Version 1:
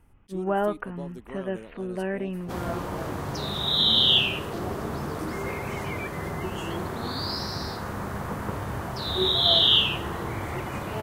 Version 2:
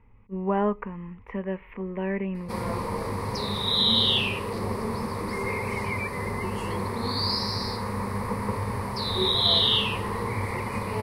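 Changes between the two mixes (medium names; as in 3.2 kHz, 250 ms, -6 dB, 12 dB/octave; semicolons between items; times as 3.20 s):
speech: muted; master: add rippled EQ curve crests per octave 0.91, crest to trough 12 dB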